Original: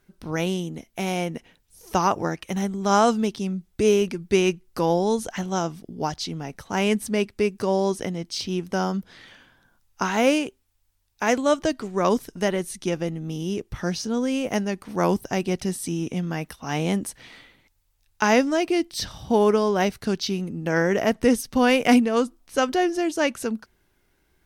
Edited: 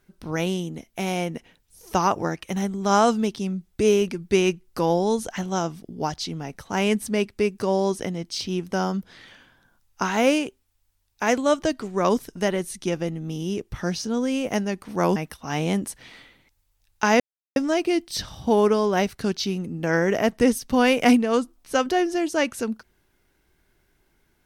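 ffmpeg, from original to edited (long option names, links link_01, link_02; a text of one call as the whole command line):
ffmpeg -i in.wav -filter_complex "[0:a]asplit=3[link_01][link_02][link_03];[link_01]atrim=end=15.162[link_04];[link_02]atrim=start=16.348:end=18.39,asetpts=PTS-STARTPTS,afade=type=out:start_time=2.038:duration=0.004:curve=hsin,apad=pad_dur=0.36[link_05];[link_03]atrim=start=18.39,asetpts=PTS-STARTPTS,afade=type=in:duration=0.004:curve=hsin[link_06];[link_05][link_06]concat=n=2:v=0:a=1[link_07];[link_04][link_07]acrossfade=duration=0.004:curve1=hsin:curve2=hsin" out.wav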